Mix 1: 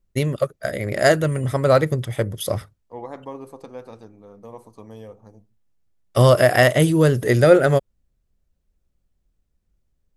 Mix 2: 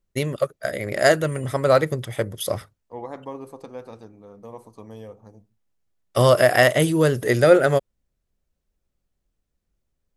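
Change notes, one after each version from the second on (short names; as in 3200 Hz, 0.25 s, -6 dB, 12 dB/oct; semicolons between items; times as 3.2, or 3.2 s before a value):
first voice: add low shelf 210 Hz -7.5 dB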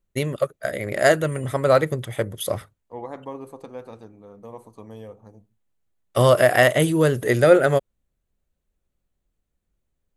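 master: add bell 5200 Hz -7.5 dB 0.34 oct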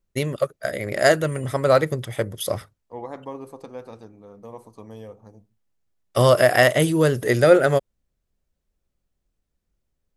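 master: add bell 5200 Hz +7.5 dB 0.34 oct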